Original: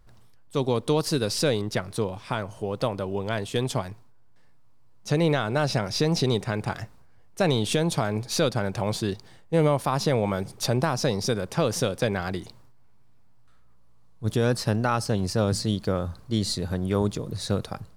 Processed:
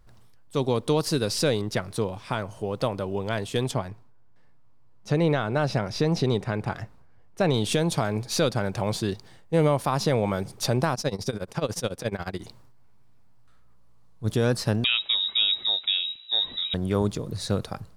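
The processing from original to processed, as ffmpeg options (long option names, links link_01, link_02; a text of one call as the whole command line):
ffmpeg -i in.wav -filter_complex "[0:a]asettb=1/sr,asplit=3[link_01][link_02][link_03];[link_01]atrim=end=3.714[link_04];[link_02]atrim=start=3.71:end=7.54,asetpts=PTS-STARTPTS,afade=type=in:duration=0.004:curve=qsin,afade=type=out:start_time=3.826:duration=0.004:curve=qsin,highshelf=frequency=4100:gain=-9.5[link_05];[link_03]atrim=start=7.536[link_06];[link_04][link_05]acrossfade=duration=0.004:curve1=hsin:curve2=qsin[link_07];[link_07][link_06]acrossfade=duration=0.004:curve1=qsin:curve2=hsin,asplit=3[link_08][link_09][link_10];[link_08]afade=type=out:start_time=10.94:duration=0.02[link_11];[link_09]tremolo=f=14:d=0.9,afade=type=in:start_time=10.94:duration=0.02,afade=type=out:start_time=12.39:duration=0.02[link_12];[link_10]afade=type=in:start_time=12.39:duration=0.02[link_13];[link_11][link_12][link_13]amix=inputs=3:normalize=0,asettb=1/sr,asplit=3[link_14][link_15][link_16];[link_14]atrim=end=14.844[link_17];[link_15]atrim=start=14.84:end=16.74,asetpts=PTS-STARTPTS,afade=type=in:duration=0.004:curve=qsin,afade=type=out:start_time=1.896:duration=0.004:curve=qsin,lowpass=frequency=3300:width_type=q:width=0.5098,lowpass=frequency=3300:width_type=q:width=0.6013,lowpass=frequency=3300:width_type=q:width=0.9,lowpass=frequency=3300:width_type=q:width=2.563,afreqshift=-3900[link_18];[link_16]atrim=start=16.736[link_19];[link_17][link_18]acrossfade=duration=0.004:curve1=hsin:curve2=qsin[link_20];[link_20][link_19]acrossfade=duration=0.004:curve1=qsin:curve2=hsin" out.wav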